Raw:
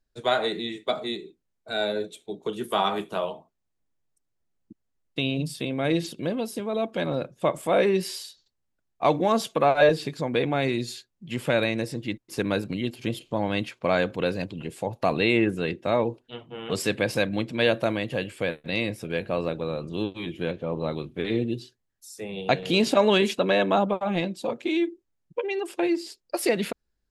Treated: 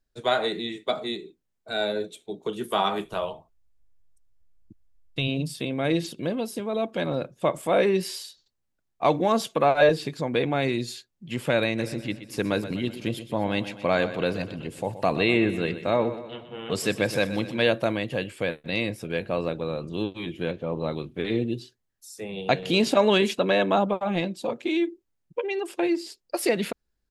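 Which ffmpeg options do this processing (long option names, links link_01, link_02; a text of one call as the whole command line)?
ffmpeg -i in.wav -filter_complex "[0:a]asplit=3[link_01][link_02][link_03];[link_01]afade=type=out:start_time=3.04:duration=0.02[link_04];[link_02]asubboost=boost=10.5:cutoff=76,afade=type=in:start_time=3.04:duration=0.02,afade=type=out:start_time=5.27:duration=0.02[link_05];[link_03]afade=type=in:start_time=5.27:duration=0.02[link_06];[link_04][link_05][link_06]amix=inputs=3:normalize=0,asplit=3[link_07][link_08][link_09];[link_07]afade=type=out:start_time=11.77:duration=0.02[link_10];[link_08]aecho=1:1:124|248|372|496|620:0.224|0.119|0.0629|0.0333|0.0177,afade=type=in:start_time=11.77:duration=0.02,afade=type=out:start_time=17.61:duration=0.02[link_11];[link_09]afade=type=in:start_time=17.61:duration=0.02[link_12];[link_10][link_11][link_12]amix=inputs=3:normalize=0" out.wav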